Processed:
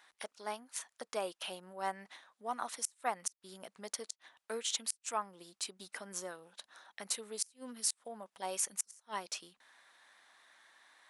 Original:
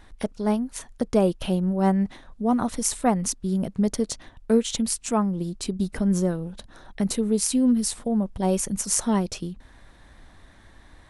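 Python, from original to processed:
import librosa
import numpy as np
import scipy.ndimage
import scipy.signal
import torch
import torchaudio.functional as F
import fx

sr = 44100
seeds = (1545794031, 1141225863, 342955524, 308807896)

y = scipy.signal.sosfilt(scipy.signal.butter(2, 1000.0, 'highpass', fs=sr, output='sos'), x)
y = fx.gate_flip(y, sr, shuts_db=-14.0, range_db=-32)
y = y * 10.0 ** (-5.0 / 20.0)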